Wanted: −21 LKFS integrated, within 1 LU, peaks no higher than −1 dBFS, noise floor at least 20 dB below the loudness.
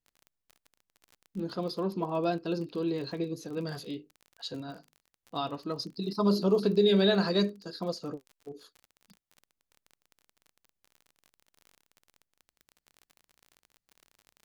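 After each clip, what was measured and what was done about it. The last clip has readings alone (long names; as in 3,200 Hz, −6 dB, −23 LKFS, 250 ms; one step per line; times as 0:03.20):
crackle rate 35 per second; integrated loudness −30.5 LKFS; sample peak −14.0 dBFS; target loudness −21.0 LKFS
→ click removal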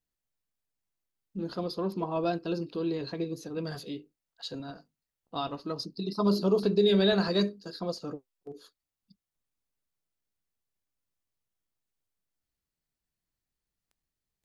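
crackle rate 0.14 per second; integrated loudness −30.0 LKFS; sample peak −14.0 dBFS; target loudness −21.0 LKFS
→ level +9 dB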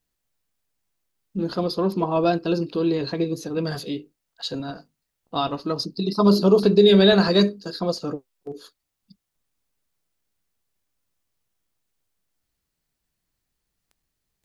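integrated loudness −21.0 LKFS; sample peak −5.0 dBFS; background noise floor −80 dBFS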